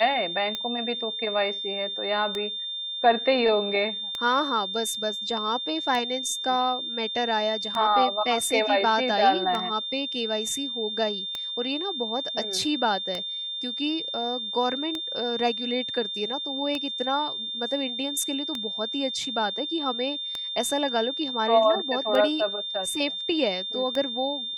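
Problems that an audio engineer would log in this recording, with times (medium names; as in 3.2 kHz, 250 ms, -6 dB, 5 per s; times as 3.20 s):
tick 33 1/3 rpm -15 dBFS
whine 3.6 kHz -30 dBFS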